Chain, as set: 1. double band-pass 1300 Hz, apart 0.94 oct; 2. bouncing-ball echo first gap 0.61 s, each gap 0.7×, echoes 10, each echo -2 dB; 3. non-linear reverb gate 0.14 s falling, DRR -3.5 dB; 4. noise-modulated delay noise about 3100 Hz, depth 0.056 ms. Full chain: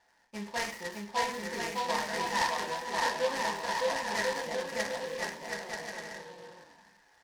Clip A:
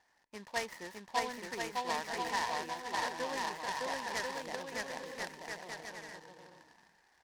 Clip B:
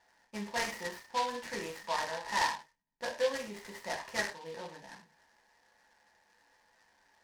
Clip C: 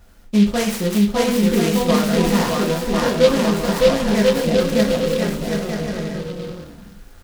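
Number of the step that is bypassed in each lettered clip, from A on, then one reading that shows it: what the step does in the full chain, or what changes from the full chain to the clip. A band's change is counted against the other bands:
3, 500 Hz band -2.0 dB; 2, loudness change -3.0 LU; 1, 125 Hz band +16.5 dB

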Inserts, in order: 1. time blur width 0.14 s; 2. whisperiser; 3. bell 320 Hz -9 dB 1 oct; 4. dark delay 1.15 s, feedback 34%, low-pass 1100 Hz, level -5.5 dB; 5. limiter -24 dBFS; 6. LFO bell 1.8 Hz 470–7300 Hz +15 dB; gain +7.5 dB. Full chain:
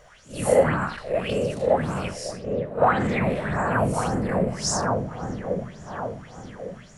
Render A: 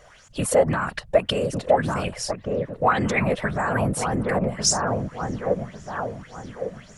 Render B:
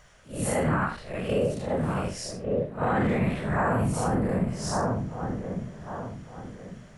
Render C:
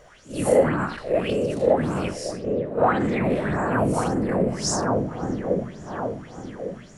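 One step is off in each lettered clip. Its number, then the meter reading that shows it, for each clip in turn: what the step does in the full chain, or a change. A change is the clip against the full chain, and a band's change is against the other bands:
1, 4 kHz band +5.0 dB; 6, 125 Hz band +4.5 dB; 3, 250 Hz band +3.5 dB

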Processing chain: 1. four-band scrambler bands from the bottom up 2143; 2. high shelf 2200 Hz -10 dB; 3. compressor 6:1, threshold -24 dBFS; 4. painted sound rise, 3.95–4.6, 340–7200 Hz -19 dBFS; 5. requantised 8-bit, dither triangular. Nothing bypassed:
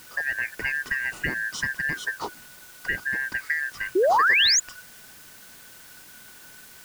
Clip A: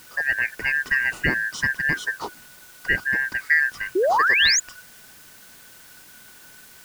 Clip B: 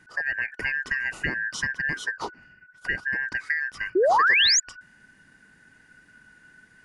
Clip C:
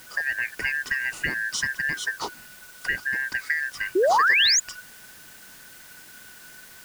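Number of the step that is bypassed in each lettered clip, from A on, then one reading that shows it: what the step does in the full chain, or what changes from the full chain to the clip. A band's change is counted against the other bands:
3, mean gain reduction 2.5 dB; 5, distortion -21 dB; 2, 125 Hz band -3.0 dB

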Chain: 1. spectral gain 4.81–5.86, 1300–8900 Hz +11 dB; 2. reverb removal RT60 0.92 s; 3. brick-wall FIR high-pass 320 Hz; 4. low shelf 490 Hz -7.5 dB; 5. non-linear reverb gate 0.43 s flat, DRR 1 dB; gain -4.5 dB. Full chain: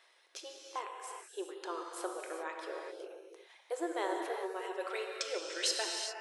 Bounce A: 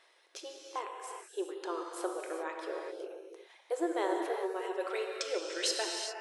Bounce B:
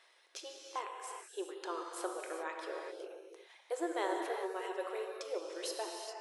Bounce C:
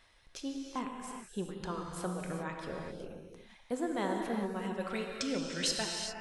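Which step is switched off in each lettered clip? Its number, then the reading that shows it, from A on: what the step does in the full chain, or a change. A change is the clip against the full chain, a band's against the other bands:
4, 250 Hz band +4.5 dB; 1, 4 kHz band -8.0 dB; 3, 250 Hz band +9.0 dB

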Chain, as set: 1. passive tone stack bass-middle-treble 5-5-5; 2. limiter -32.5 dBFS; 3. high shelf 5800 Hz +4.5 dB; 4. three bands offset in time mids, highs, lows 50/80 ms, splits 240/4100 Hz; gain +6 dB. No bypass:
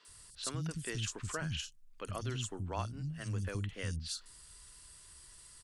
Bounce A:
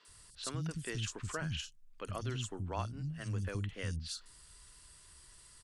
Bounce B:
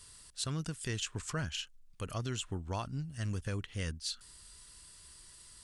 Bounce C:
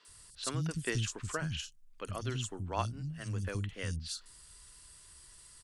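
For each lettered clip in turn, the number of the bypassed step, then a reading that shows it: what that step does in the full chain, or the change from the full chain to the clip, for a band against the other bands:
3, 8 kHz band -3.0 dB; 4, echo-to-direct -22.5 dB to none; 2, crest factor change +2.5 dB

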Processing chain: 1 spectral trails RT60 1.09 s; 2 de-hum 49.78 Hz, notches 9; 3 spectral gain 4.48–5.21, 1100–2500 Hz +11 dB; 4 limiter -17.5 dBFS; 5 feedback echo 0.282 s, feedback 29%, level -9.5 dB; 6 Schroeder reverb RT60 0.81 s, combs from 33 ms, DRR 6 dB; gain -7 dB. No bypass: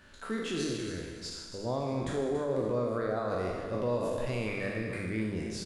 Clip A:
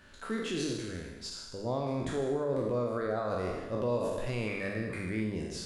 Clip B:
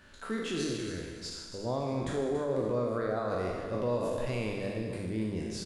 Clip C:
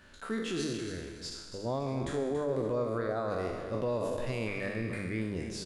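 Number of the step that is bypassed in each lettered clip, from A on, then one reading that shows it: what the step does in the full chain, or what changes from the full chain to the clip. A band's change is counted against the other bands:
5, echo-to-direct -4.0 dB to -6.0 dB; 3, 2 kHz band -2.5 dB; 6, echo-to-direct -4.0 dB to -9.0 dB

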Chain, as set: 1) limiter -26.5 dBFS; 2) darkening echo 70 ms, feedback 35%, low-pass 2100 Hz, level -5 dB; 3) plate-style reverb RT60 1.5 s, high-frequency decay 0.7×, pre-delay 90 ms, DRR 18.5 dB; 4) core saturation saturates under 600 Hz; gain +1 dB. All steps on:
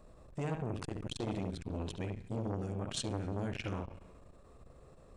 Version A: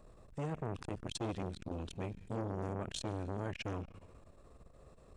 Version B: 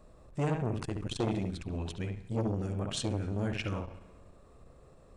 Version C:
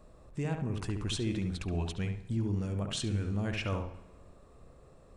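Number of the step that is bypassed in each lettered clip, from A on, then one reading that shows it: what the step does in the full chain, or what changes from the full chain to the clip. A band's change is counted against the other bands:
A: 2, 1 kHz band +3.0 dB; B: 1, momentary loudness spread change -4 LU; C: 4, crest factor change -4.5 dB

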